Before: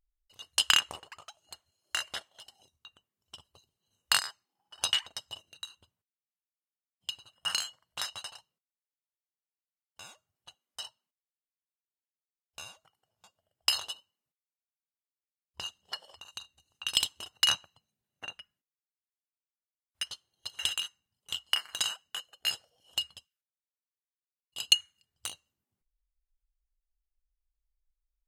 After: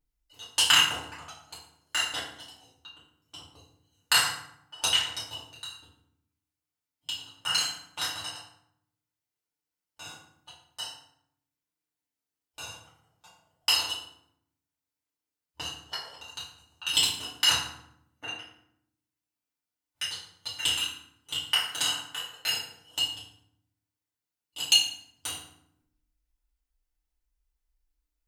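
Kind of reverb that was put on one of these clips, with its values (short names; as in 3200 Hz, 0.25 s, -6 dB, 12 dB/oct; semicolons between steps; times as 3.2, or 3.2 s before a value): FDN reverb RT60 0.7 s, low-frequency decay 1.6×, high-frequency decay 0.7×, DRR -8.5 dB; gain -3 dB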